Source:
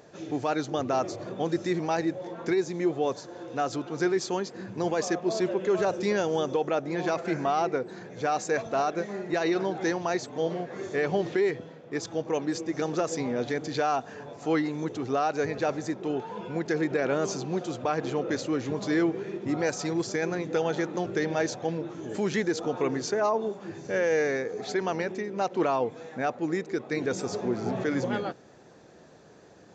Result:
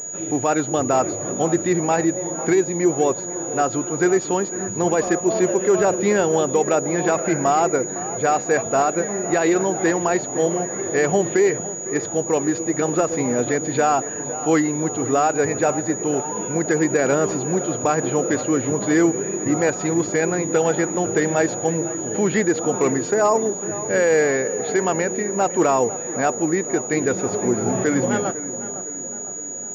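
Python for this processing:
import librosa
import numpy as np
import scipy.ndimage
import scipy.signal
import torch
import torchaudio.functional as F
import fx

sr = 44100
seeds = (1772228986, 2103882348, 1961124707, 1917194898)

y = fx.echo_tape(x, sr, ms=506, feedback_pct=67, wet_db=-11, lp_hz=1600.0, drive_db=21.0, wow_cents=39)
y = fx.pwm(y, sr, carrier_hz=6800.0)
y = y * 10.0 ** (8.0 / 20.0)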